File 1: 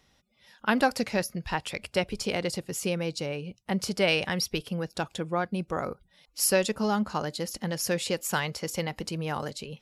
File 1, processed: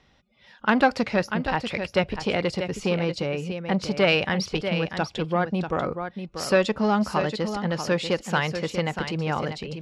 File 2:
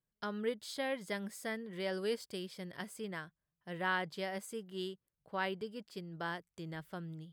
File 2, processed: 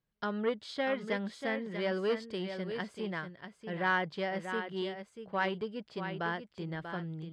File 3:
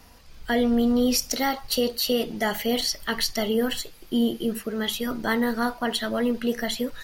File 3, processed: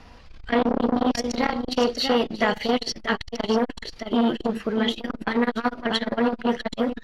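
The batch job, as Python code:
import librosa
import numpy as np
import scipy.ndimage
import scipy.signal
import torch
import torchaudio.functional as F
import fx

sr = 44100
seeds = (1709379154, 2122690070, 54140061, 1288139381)

y = scipy.signal.sosfilt(scipy.signal.butter(2, 3700.0, 'lowpass', fs=sr, output='sos'), x)
y = y + 10.0 ** (-9.0 / 20.0) * np.pad(y, (int(640 * sr / 1000.0), 0))[:len(y)]
y = fx.transformer_sat(y, sr, knee_hz=770.0)
y = y * 10.0 ** (5.5 / 20.0)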